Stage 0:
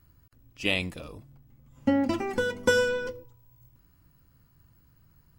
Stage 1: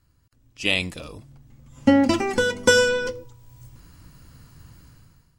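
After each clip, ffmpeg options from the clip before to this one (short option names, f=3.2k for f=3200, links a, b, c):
-af "lowpass=9.1k,highshelf=f=3.8k:g=10,dynaudnorm=f=160:g=7:m=17dB,volume=-3.5dB"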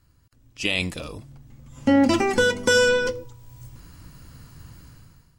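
-af "alimiter=limit=-12.5dB:level=0:latency=1,volume=3dB"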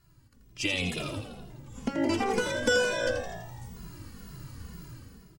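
-filter_complex "[0:a]acompressor=threshold=-26dB:ratio=3,asplit=2[a][b];[b]asplit=8[c][d][e][f][g][h][i][j];[c]adelay=83,afreqshift=55,volume=-8dB[k];[d]adelay=166,afreqshift=110,volume=-12.2dB[l];[e]adelay=249,afreqshift=165,volume=-16.3dB[m];[f]adelay=332,afreqshift=220,volume=-20.5dB[n];[g]adelay=415,afreqshift=275,volume=-24.6dB[o];[h]adelay=498,afreqshift=330,volume=-28.8dB[p];[i]adelay=581,afreqshift=385,volume=-32.9dB[q];[j]adelay=664,afreqshift=440,volume=-37.1dB[r];[k][l][m][n][o][p][q][r]amix=inputs=8:normalize=0[s];[a][s]amix=inputs=2:normalize=0,asplit=2[t][u];[u]adelay=2.4,afreqshift=-2.1[v];[t][v]amix=inputs=2:normalize=1,volume=2.5dB"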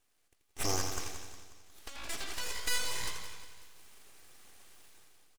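-af "bandpass=f=4.1k:t=q:w=1.1:csg=0,aeval=exprs='abs(val(0))':c=same,aecho=1:1:180|360|540|720|900:0.251|0.123|0.0603|0.0296|0.0145,volume=4dB"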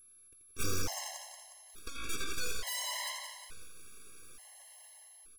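-af "aeval=exprs='val(0)+0.002*sin(2*PI*11000*n/s)':c=same,volume=28dB,asoftclip=hard,volume=-28dB,afftfilt=real='re*gt(sin(2*PI*0.57*pts/sr)*(1-2*mod(floor(b*sr/1024/550),2)),0)':imag='im*gt(sin(2*PI*0.57*pts/sr)*(1-2*mod(floor(b*sr/1024/550),2)),0)':win_size=1024:overlap=0.75,volume=4.5dB"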